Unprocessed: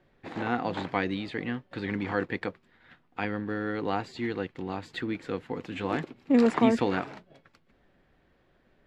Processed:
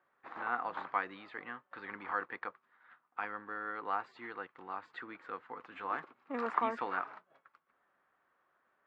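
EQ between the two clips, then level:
resonant band-pass 1,200 Hz, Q 3.2
+2.5 dB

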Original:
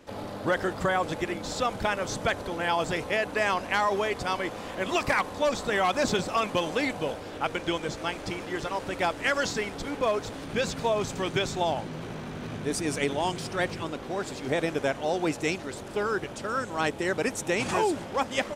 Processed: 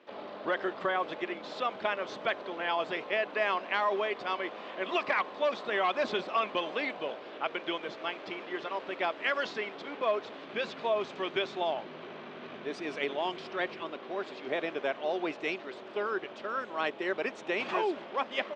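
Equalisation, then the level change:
loudspeaker in its box 190–3,300 Hz, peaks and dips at 220 Hz +4 dB, 380 Hz +8 dB, 630 Hz +7 dB, 1,100 Hz +5 dB
spectral tilt +4.5 dB per octave
low-shelf EQ 450 Hz +7 dB
−8.5 dB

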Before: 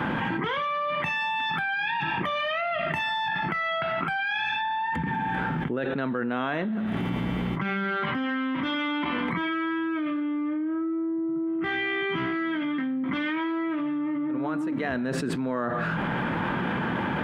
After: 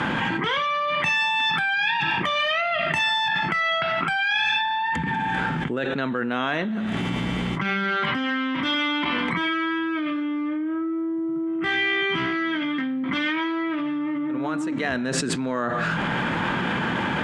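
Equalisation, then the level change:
low-pass with resonance 7,600 Hz, resonance Q 1.9
high-shelf EQ 2,300 Hz +9 dB
+1.5 dB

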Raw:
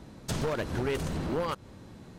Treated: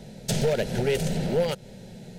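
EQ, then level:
phaser with its sweep stopped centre 300 Hz, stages 6
+8.5 dB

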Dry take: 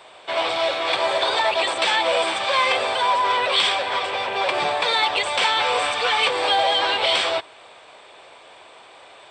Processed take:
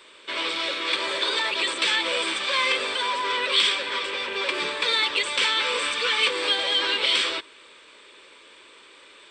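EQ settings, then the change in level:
phaser with its sweep stopped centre 300 Hz, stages 4
0.0 dB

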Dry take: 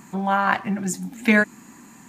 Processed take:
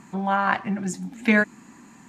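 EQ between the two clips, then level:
high-frequency loss of the air 50 metres
−1.5 dB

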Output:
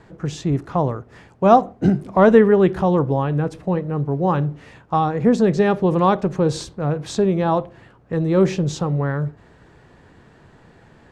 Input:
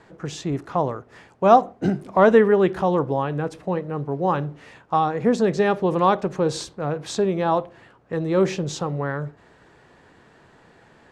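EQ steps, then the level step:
low-shelf EQ 210 Hz +11 dB
0.0 dB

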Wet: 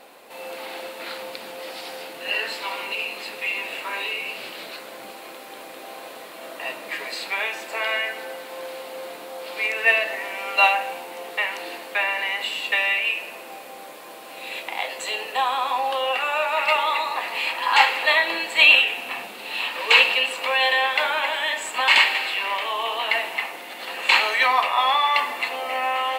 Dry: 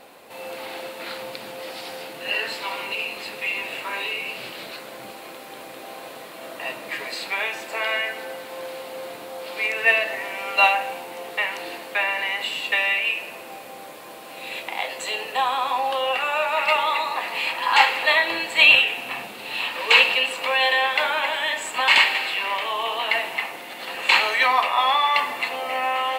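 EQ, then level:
parametric band 110 Hz −10.5 dB 1 octave
low-shelf EQ 170 Hz −3 dB
0.0 dB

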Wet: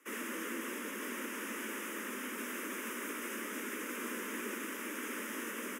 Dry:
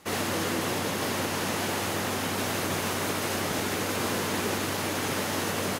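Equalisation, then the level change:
Butterworth high-pass 210 Hz 96 dB per octave
phaser with its sweep stopped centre 1,800 Hz, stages 4
−7.5 dB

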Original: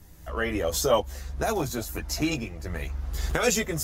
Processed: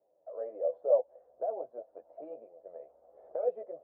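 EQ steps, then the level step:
flat-topped band-pass 580 Hz, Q 3.2
high-frequency loss of the air 370 metres
0.0 dB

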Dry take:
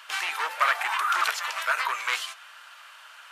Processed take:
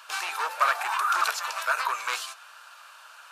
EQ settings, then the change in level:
thirty-one-band graphic EQ 315 Hz −3 dB, 2,000 Hz −11 dB, 3,150 Hz −7 dB
+1.5 dB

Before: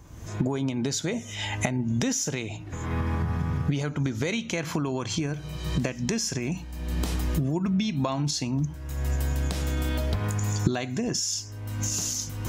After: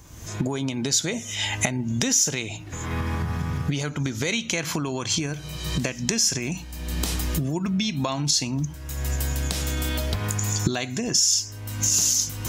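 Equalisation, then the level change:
high-shelf EQ 2,300 Hz +10 dB
0.0 dB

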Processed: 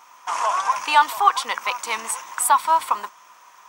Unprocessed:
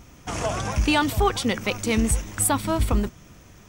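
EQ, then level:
high-pass with resonance 1,000 Hz, resonance Q 6.8
0.0 dB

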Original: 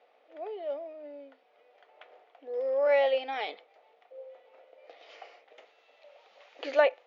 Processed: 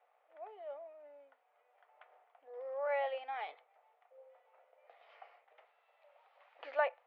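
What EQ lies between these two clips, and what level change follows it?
four-pole ladder band-pass 1,200 Hz, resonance 25%
high-frequency loss of the air 50 metres
+5.5 dB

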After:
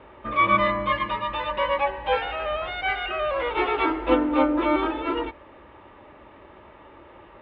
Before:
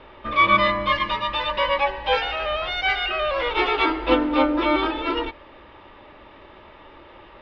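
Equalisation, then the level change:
high-pass filter 48 Hz
high-frequency loss of the air 410 metres
0.0 dB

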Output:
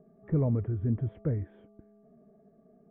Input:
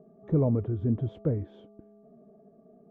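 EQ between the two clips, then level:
low-pass filter 2,500 Hz 24 dB per octave
low-shelf EQ 140 Hz +10.5 dB
parametric band 1,900 Hz +12 dB 1 octave
−6.5 dB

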